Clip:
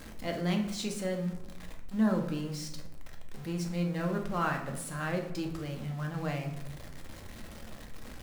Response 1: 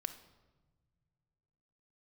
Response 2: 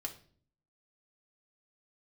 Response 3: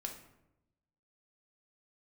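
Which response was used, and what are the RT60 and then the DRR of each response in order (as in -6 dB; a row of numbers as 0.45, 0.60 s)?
3; 1.3, 0.50, 0.90 s; 7.0, 1.0, 2.0 dB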